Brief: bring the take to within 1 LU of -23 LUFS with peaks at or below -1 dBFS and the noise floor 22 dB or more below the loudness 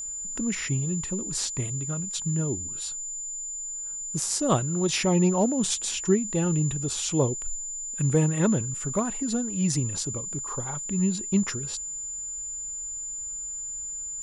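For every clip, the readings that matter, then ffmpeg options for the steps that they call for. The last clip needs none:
steady tone 7100 Hz; tone level -32 dBFS; loudness -27.0 LUFS; peak -10.0 dBFS; loudness target -23.0 LUFS
-> -af "bandreject=f=7.1k:w=30"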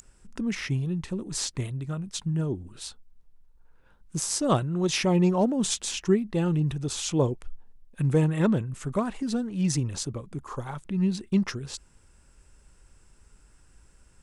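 steady tone none; loudness -27.5 LUFS; peak -11.0 dBFS; loudness target -23.0 LUFS
-> -af "volume=4.5dB"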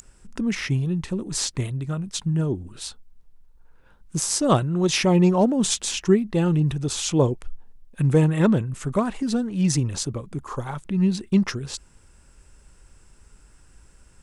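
loudness -23.0 LUFS; peak -6.5 dBFS; noise floor -54 dBFS

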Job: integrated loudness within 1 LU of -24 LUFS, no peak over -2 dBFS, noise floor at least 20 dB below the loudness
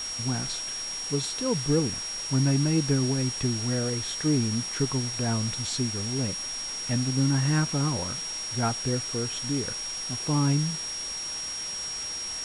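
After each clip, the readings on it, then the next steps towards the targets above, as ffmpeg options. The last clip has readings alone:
steady tone 5600 Hz; tone level -32 dBFS; noise floor -34 dBFS; noise floor target -47 dBFS; loudness -27.0 LUFS; peak -12.5 dBFS; loudness target -24.0 LUFS
-> -af "bandreject=f=5.6k:w=30"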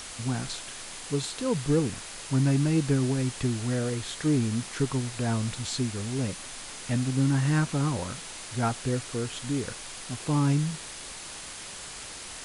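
steady tone none; noise floor -41 dBFS; noise floor target -49 dBFS
-> -af "afftdn=nr=8:nf=-41"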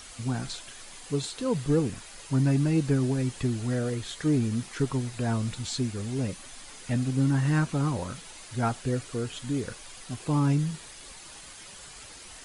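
noise floor -46 dBFS; noise floor target -49 dBFS
-> -af "afftdn=nr=6:nf=-46"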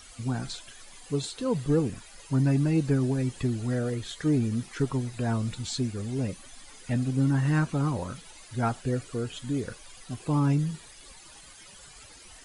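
noise floor -50 dBFS; loudness -28.5 LUFS; peak -14.0 dBFS; loudness target -24.0 LUFS
-> -af "volume=4.5dB"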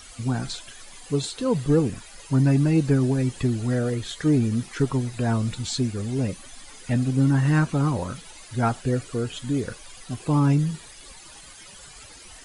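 loudness -24.0 LUFS; peak -9.5 dBFS; noise floor -45 dBFS

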